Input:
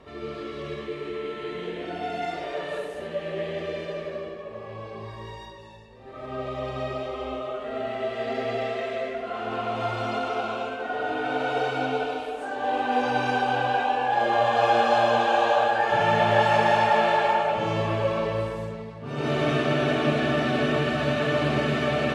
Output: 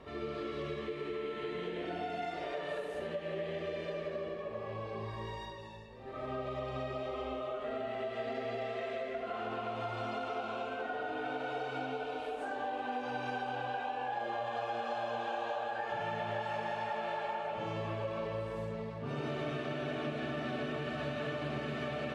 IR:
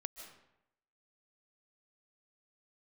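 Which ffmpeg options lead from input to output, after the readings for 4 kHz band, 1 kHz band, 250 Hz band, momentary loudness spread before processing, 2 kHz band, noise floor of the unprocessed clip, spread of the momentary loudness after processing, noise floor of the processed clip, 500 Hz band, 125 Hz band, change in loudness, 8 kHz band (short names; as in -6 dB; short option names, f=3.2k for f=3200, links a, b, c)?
-13.0 dB, -13.5 dB, -11.5 dB, 15 LU, -13.0 dB, -40 dBFS, 3 LU, -43 dBFS, -11.5 dB, -11.5 dB, -12.5 dB, n/a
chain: -filter_complex "[0:a]acompressor=threshold=-33dB:ratio=6,asplit=2[a][b];[1:a]atrim=start_sample=2205,lowpass=5.4k[c];[b][c]afir=irnorm=-1:irlink=0,volume=-6dB[d];[a][d]amix=inputs=2:normalize=0,volume=-4.5dB"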